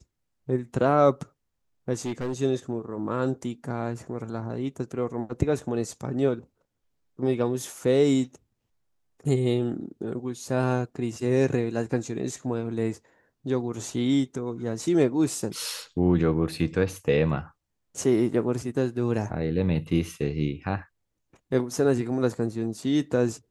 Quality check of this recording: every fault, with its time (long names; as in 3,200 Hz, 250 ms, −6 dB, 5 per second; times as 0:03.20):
0:01.93–0:02.40: clipping −25.5 dBFS